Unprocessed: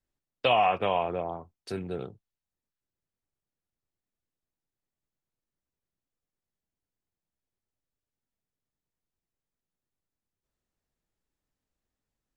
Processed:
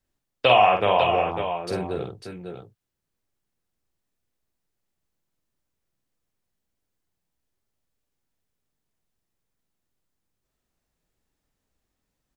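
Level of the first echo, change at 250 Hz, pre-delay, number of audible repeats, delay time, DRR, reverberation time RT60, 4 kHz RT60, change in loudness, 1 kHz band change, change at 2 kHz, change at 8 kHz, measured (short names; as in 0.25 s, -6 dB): -5.5 dB, +5.5 dB, none, 2, 48 ms, none, none, none, +7.0 dB, +7.0 dB, +8.0 dB, +7.5 dB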